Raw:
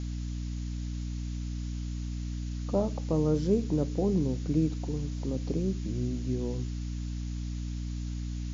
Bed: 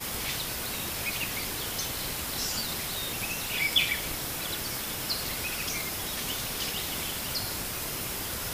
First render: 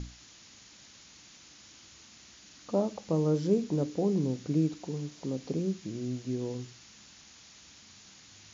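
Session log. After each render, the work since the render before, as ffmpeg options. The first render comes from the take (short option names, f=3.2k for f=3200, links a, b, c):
-af "bandreject=f=60:t=h:w=6,bandreject=f=120:t=h:w=6,bandreject=f=180:t=h:w=6,bandreject=f=240:t=h:w=6,bandreject=f=300:t=h:w=6"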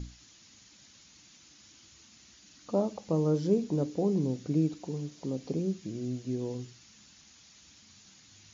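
-af "afftdn=nr=6:nf=-55"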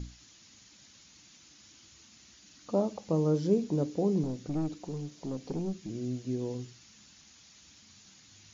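-filter_complex "[0:a]asettb=1/sr,asplit=3[a][b][c];[a]atrim=end=4.234[d];[b]atrim=start=4.23:end=5.9,asetpts=PTS-STARTPTS,afade=t=in:d=0.004:c=qsin,afade=t=out:st=1.666:d=0.004:c=qsin,aeval=exprs='(tanh(20*val(0)+0.3)-tanh(0.3))/20':c=same[e];[c]atrim=start=5.896[f];[d][e]acrossfade=d=0.004:c1=hsin:c2=qsin[g];[g][f]acrossfade=d=0.004:c1=qsin:c2=hsin"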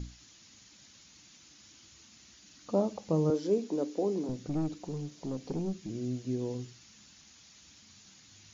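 -filter_complex "[0:a]asettb=1/sr,asplit=3[a][b][c];[a]atrim=end=3.304[d];[b]atrim=start=3.3:end=4.29,asetpts=PTS-STARTPTS,afade=t=in:d=0.004:c=qsin,afade=t=out:st=0.986:d=0.004:c=qsin,highpass=f=250:w=0.5412,highpass=f=250:w=1.3066[e];[c]atrim=start=4.286[f];[d][e]acrossfade=d=0.004:c1=hsin:c2=qsin[g];[g][f]acrossfade=d=0.004:c1=qsin:c2=hsin"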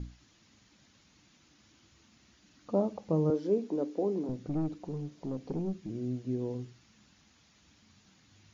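-af "lowpass=f=1.6k:p=1"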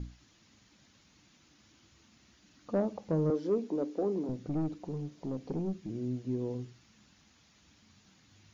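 -af "asoftclip=type=tanh:threshold=-20dB"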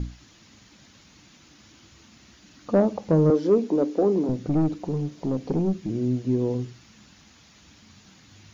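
-af "volume=10.5dB"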